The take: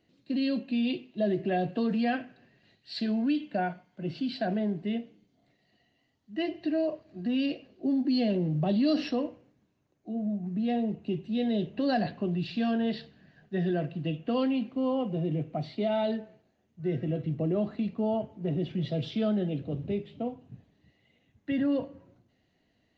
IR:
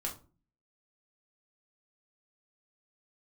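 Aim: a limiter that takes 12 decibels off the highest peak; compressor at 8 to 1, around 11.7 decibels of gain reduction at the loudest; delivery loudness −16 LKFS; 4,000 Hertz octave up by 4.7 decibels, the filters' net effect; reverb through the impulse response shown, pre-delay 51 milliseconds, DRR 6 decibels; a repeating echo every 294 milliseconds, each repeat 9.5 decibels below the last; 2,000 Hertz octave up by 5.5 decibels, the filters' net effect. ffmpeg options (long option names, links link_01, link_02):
-filter_complex "[0:a]equalizer=frequency=2000:width_type=o:gain=6.5,equalizer=frequency=4000:width_type=o:gain=3.5,acompressor=threshold=-35dB:ratio=8,alimiter=level_in=12.5dB:limit=-24dB:level=0:latency=1,volume=-12.5dB,aecho=1:1:294|588|882|1176:0.335|0.111|0.0365|0.012,asplit=2[link_01][link_02];[1:a]atrim=start_sample=2205,adelay=51[link_03];[link_02][link_03]afir=irnorm=-1:irlink=0,volume=-7dB[link_04];[link_01][link_04]amix=inputs=2:normalize=0,volume=27dB"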